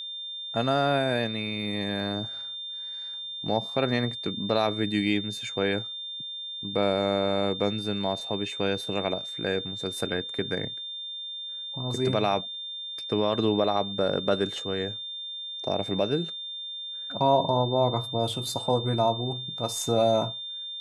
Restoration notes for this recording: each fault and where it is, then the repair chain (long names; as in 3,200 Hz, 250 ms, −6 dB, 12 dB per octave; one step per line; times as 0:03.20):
whistle 3,600 Hz −34 dBFS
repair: notch filter 3,600 Hz, Q 30